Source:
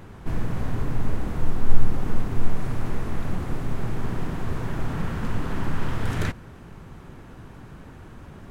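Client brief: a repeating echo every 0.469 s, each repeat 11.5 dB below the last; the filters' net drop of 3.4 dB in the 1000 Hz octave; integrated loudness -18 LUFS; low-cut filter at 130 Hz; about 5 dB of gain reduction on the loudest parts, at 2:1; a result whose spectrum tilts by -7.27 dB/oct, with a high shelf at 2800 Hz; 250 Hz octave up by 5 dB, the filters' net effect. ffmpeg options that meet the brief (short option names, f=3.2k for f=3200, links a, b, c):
-af "highpass=130,equalizer=f=250:t=o:g=7.5,equalizer=f=1k:t=o:g=-3.5,highshelf=f=2.8k:g=-9,acompressor=threshold=-33dB:ratio=2,aecho=1:1:469|938|1407:0.266|0.0718|0.0194,volume=17dB"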